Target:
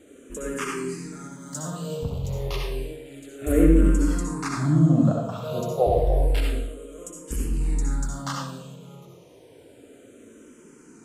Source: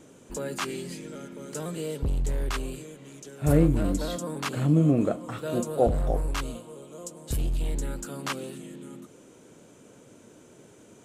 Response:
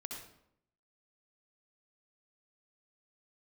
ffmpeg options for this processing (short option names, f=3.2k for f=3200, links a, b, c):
-filter_complex "[0:a]asettb=1/sr,asplit=3[a][b][c];[a]atrim=end=1.064[d];[b]atrim=start=1.06:end=1.59,asetpts=PTS-STARTPTS,afade=t=in:d=0.004:c=qsin,afade=t=out:st=0.526:d=0.004:c=qsin,highshelf=f=7.9k:g=9.5[e];[c]atrim=start=1.586[f];[d][e]acrossfade=d=0.004:c1=hsin:c2=qsin[g];[g][f]acrossfade=d=0.004:c1=qsin:c2=hsin[h];[1:a]atrim=start_sample=2205[i];[h][i]afir=irnorm=-1:irlink=0,asplit=2[j][k];[k]afreqshift=-0.3[l];[j][l]amix=inputs=2:normalize=1,volume=6.5dB"